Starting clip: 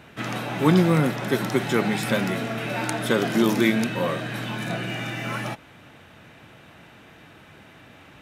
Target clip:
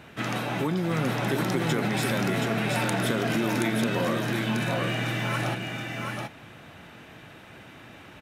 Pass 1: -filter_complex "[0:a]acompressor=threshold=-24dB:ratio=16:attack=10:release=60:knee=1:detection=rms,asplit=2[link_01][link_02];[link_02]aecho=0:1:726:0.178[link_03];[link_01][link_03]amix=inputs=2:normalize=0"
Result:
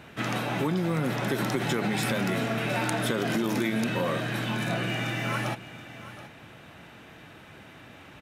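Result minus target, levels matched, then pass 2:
echo-to-direct −11.5 dB
-filter_complex "[0:a]acompressor=threshold=-24dB:ratio=16:attack=10:release=60:knee=1:detection=rms,asplit=2[link_01][link_02];[link_02]aecho=0:1:726:0.668[link_03];[link_01][link_03]amix=inputs=2:normalize=0"

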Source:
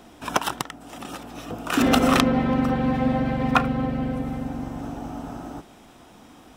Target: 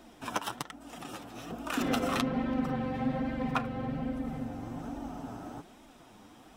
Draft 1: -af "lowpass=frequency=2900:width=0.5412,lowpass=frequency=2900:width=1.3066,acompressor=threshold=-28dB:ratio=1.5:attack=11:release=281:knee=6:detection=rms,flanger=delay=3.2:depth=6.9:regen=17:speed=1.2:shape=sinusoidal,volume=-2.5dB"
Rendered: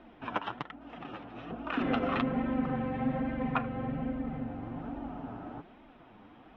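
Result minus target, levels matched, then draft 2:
4,000 Hz band −5.5 dB
-af "acompressor=threshold=-28dB:ratio=1.5:attack=11:release=281:knee=6:detection=rms,flanger=delay=3.2:depth=6.9:regen=17:speed=1.2:shape=sinusoidal,volume=-2.5dB"

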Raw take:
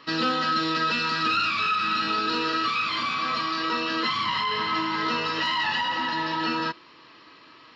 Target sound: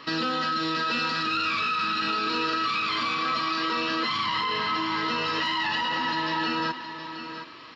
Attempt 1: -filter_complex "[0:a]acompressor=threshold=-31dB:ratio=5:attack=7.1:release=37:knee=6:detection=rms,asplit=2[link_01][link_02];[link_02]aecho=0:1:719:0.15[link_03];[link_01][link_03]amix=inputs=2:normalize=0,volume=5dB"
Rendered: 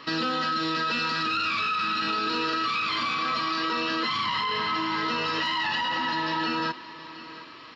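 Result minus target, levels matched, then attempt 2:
echo-to-direct −6.5 dB
-filter_complex "[0:a]acompressor=threshold=-31dB:ratio=5:attack=7.1:release=37:knee=6:detection=rms,asplit=2[link_01][link_02];[link_02]aecho=0:1:719:0.316[link_03];[link_01][link_03]amix=inputs=2:normalize=0,volume=5dB"

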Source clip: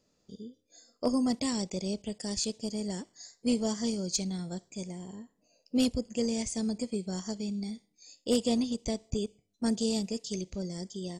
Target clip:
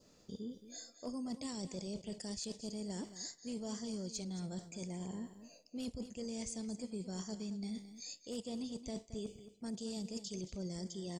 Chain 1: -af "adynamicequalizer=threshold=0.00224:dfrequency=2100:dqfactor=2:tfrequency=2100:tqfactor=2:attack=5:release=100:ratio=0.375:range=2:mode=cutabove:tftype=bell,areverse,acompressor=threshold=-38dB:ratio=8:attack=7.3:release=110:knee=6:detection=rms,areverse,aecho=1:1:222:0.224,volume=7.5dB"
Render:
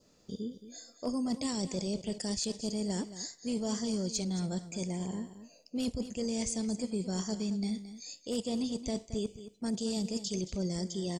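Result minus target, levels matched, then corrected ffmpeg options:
downward compressor: peak gain reduction −8.5 dB
-af "adynamicequalizer=threshold=0.00224:dfrequency=2100:dqfactor=2:tfrequency=2100:tqfactor=2:attack=5:release=100:ratio=0.375:range=2:mode=cutabove:tftype=bell,areverse,acompressor=threshold=-48dB:ratio=8:attack=7.3:release=110:knee=6:detection=rms,areverse,aecho=1:1:222:0.224,volume=7.5dB"

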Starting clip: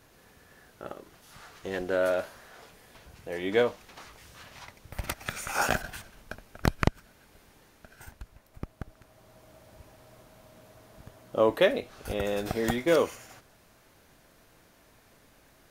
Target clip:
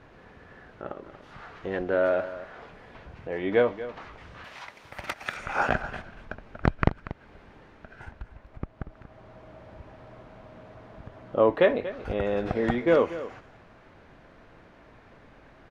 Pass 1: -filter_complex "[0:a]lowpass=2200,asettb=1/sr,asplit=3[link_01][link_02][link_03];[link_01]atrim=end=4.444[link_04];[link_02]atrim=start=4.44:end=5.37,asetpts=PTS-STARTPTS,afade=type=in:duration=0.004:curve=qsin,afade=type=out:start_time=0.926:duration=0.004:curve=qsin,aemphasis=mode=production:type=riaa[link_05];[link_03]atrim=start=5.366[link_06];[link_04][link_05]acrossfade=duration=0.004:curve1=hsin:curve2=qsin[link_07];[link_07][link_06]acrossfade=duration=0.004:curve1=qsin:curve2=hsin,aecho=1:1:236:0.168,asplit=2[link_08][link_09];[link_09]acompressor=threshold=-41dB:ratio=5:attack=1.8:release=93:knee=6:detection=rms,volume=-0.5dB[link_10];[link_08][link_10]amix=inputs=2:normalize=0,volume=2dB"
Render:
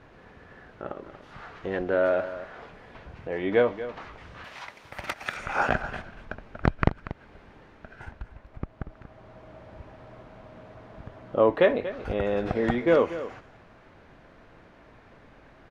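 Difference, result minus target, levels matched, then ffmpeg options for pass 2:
downward compressor: peak gain reduction −5.5 dB
-filter_complex "[0:a]lowpass=2200,asettb=1/sr,asplit=3[link_01][link_02][link_03];[link_01]atrim=end=4.444[link_04];[link_02]atrim=start=4.44:end=5.37,asetpts=PTS-STARTPTS,afade=type=in:duration=0.004:curve=qsin,afade=type=out:start_time=0.926:duration=0.004:curve=qsin,aemphasis=mode=production:type=riaa[link_05];[link_03]atrim=start=5.366[link_06];[link_04][link_05]acrossfade=duration=0.004:curve1=hsin:curve2=qsin[link_07];[link_07][link_06]acrossfade=duration=0.004:curve1=qsin:curve2=hsin,aecho=1:1:236:0.168,asplit=2[link_08][link_09];[link_09]acompressor=threshold=-48dB:ratio=5:attack=1.8:release=93:knee=6:detection=rms,volume=-0.5dB[link_10];[link_08][link_10]amix=inputs=2:normalize=0,volume=2dB"

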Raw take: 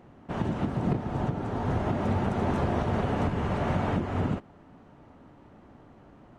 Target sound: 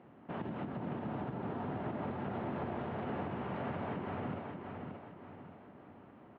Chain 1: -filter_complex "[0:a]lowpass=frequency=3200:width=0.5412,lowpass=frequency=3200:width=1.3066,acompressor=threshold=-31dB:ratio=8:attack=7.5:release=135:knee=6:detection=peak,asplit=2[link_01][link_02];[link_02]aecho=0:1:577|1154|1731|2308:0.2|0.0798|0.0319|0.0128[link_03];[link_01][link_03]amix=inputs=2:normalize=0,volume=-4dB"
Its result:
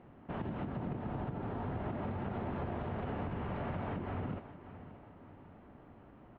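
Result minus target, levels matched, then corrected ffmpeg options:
echo-to-direct −9 dB; 125 Hz band +2.5 dB
-filter_complex "[0:a]lowpass=frequency=3200:width=0.5412,lowpass=frequency=3200:width=1.3066,acompressor=threshold=-31dB:ratio=8:attack=7.5:release=135:knee=6:detection=peak,highpass=140,asplit=2[link_01][link_02];[link_02]aecho=0:1:577|1154|1731|2308|2885:0.562|0.225|0.09|0.036|0.0144[link_03];[link_01][link_03]amix=inputs=2:normalize=0,volume=-4dB"

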